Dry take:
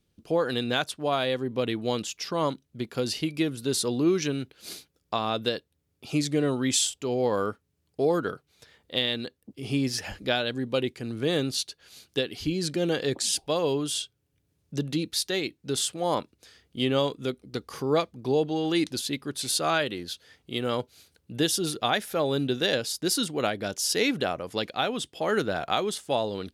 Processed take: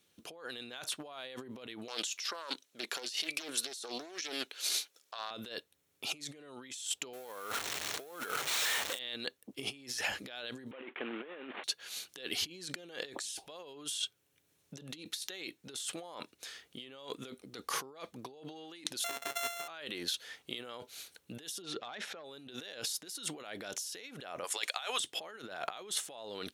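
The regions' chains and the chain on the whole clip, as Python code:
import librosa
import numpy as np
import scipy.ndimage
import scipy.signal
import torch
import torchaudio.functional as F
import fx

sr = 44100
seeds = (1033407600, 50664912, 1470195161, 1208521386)

y = fx.chain(x, sr, fx.highpass(hz=390.0, slope=12),
    fx.peak_eq(hz=5500.0, db=5.5, octaves=1.8),
    fx.doppler_dist(depth_ms=0.47), at=(1.88, 5.31))
y = fx.chain(y, sr, fx.zero_step(step_db=-33.5),
    fx.sample_hold(seeds[0], rate_hz=12000.0, jitter_pct=20),
    fx.low_shelf(hz=370.0, db=-9.0), at=(7.13, 8.99))
y = fx.chain(y, sr, fx.cvsd(bps=16000),
    fx.highpass(hz=240.0, slope=24), at=(10.71, 11.64))
y = fx.chain(y, sr, fx.sample_sort(block=64),
    fx.highpass(hz=500.0, slope=6), at=(19.04, 19.68))
y = fx.chain(y, sr, fx.clip_hard(threshold_db=-18.5),
    fx.air_absorb(metres=150.0), at=(21.62, 22.24))
y = fx.chain(y, sr, fx.highpass(hz=820.0, slope=12),
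    fx.peak_eq(hz=8100.0, db=12.0, octaves=0.76), at=(24.44, 25.0))
y = fx.over_compress(y, sr, threshold_db=-38.0, ratio=-1.0)
y = fx.highpass(y, sr, hz=930.0, slope=6)
y = fx.notch(y, sr, hz=4800.0, q=11.0)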